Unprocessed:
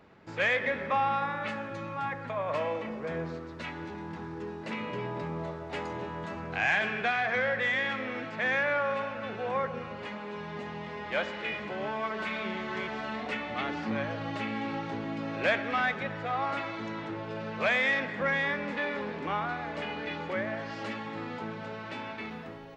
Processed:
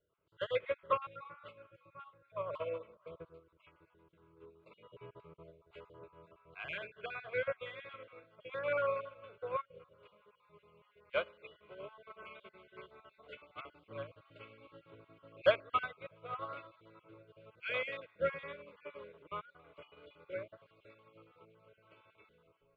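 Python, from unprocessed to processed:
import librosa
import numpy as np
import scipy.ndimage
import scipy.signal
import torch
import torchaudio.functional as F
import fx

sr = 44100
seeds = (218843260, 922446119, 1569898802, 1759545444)

y = fx.spec_dropout(x, sr, seeds[0], share_pct=30)
y = fx.lowpass(y, sr, hz=3100.0, slope=6)
y = fx.fixed_phaser(y, sr, hz=1200.0, stages=8)
y = fx.echo_feedback(y, sr, ms=630, feedback_pct=52, wet_db=-22)
y = fx.upward_expand(y, sr, threshold_db=-44.0, expansion=2.5)
y = y * 10.0 ** (5.5 / 20.0)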